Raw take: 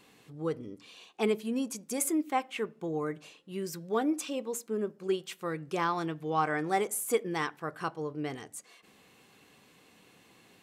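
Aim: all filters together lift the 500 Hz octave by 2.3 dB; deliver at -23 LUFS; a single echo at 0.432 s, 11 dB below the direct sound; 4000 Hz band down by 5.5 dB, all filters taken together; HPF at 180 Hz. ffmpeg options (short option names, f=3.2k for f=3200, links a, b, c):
-af "highpass=180,equalizer=f=500:t=o:g=3,equalizer=f=4k:t=o:g=-8,aecho=1:1:432:0.282,volume=9dB"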